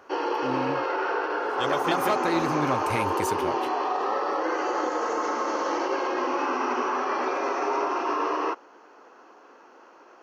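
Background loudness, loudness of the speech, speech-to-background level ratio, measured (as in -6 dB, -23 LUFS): -27.0 LUFS, -30.5 LUFS, -3.5 dB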